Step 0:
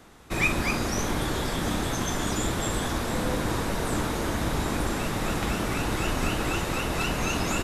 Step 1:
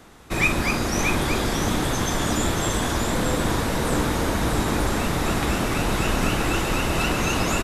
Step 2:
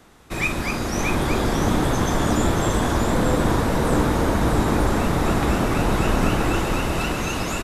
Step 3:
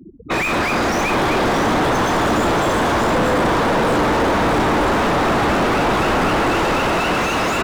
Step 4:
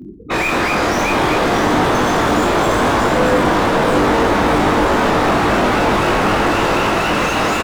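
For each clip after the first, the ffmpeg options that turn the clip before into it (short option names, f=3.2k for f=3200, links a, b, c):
-af "aecho=1:1:630:0.562,volume=3.5dB"
-filter_complex "[0:a]acrossover=split=1500[a][b];[a]dynaudnorm=f=250:g=9:m=7.5dB[c];[c][b]amix=inputs=2:normalize=0,asoftclip=type=hard:threshold=-4.5dB,volume=-3dB"
-filter_complex "[0:a]afftfilt=real='re*gte(hypot(re,im),0.0126)':imag='im*gte(hypot(re,im),0.0126)':win_size=1024:overlap=0.75,asplit=2[a][b];[b]highpass=f=720:p=1,volume=39dB,asoftclip=type=tanh:threshold=-7dB[c];[a][c]amix=inputs=2:normalize=0,lowpass=f=1.4k:p=1,volume=-6dB,volume=-2dB"
-af "areverse,acompressor=mode=upward:threshold=-22dB:ratio=2.5,areverse,aecho=1:1:20|48|87.2|142.1|218.9:0.631|0.398|0.251|0.158|0.1"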